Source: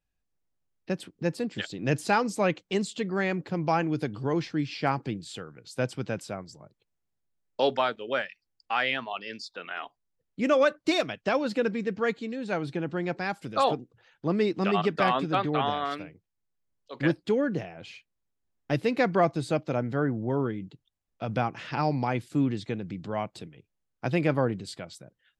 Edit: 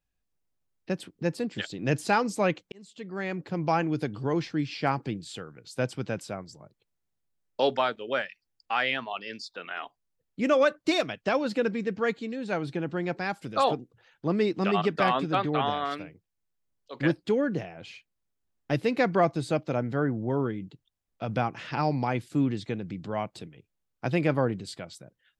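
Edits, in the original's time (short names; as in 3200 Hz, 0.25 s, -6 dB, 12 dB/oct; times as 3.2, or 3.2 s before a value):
2.72–3.65 fade in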